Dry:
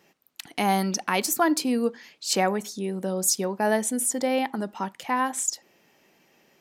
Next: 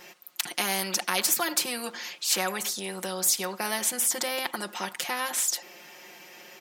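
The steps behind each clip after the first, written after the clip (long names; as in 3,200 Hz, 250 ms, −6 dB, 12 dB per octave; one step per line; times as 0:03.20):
high-pass filter 770 Hz 6 dB per octave
comb filter 5.6 ms, depth 92%
every bin compressed towards the loudest bin 2 to 1
level −1 dB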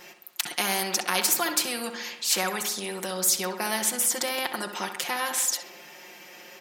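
feedback echo with a low-pass in the loop 65 ms, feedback 63%, low-pass 3,500 Hz, level −9 dB
level +1 dB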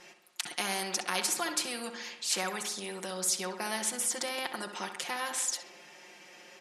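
Butterworth low-pass 11,000 Hz 36 dB per octave
level −6 dB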